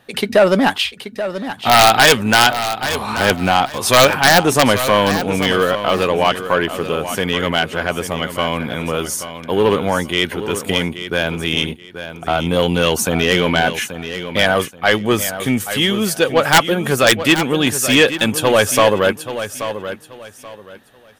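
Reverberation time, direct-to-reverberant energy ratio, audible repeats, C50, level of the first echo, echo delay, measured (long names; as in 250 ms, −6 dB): no reverb audible, no reverb audible, 2, no reverb audible, −11.0 dB, 831 ms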